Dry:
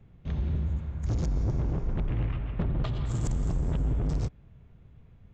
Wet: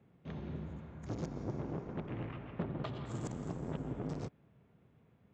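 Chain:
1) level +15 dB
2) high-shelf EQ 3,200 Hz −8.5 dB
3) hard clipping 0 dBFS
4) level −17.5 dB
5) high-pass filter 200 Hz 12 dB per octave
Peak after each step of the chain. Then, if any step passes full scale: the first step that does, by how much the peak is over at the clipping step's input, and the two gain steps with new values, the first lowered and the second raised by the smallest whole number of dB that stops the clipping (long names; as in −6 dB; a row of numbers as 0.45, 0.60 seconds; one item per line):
−5.5, −5.5, −5.5, −23.0, −23.5 dBFS
no step passes full scale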